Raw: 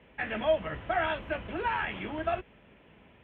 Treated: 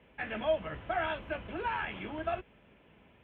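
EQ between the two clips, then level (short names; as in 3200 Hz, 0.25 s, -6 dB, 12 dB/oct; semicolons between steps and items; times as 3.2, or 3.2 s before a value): notch 1900 Hz, Q 23; -3.5 dB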